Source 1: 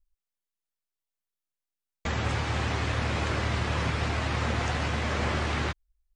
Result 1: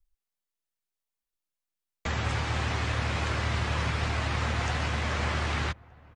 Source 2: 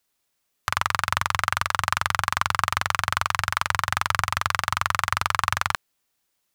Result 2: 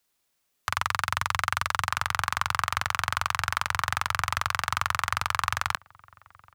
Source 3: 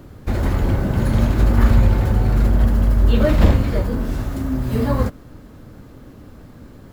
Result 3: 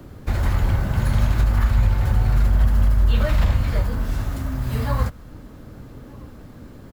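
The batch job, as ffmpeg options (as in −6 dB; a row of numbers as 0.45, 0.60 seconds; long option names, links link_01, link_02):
-filter_complex "[0:a]acrossover=split=160|670[link_01][link_02][link_03];[link_02]acompressor=threshold=-38dB:ratio=6[link_04];[link_01][link_04][link_03]amix=inputs=3:normalize=0,alimiter=limit=-9dB:level=0:latency=1:release=194,asplit=2[link_05][link_06];[link_06]adelay=1224,volume=-23dB,highshelf=frequency=4000:gain=-27.6[link_07];[link_05][link_07]amix=inputs=2:normalize=0"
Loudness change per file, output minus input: −0.5, −3.5, −3.0 LU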